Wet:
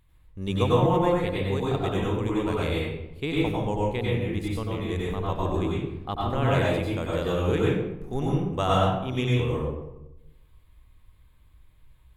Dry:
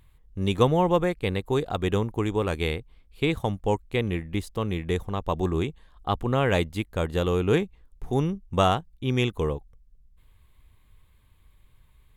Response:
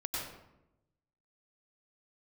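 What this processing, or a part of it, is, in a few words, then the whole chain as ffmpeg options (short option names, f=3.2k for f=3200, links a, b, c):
bathroom: -filter_complex "[1:a]atrim=start_sample=2205[a];[0:a][a]afir=irnorm=-1:irlink=0,volume=-3.5dB"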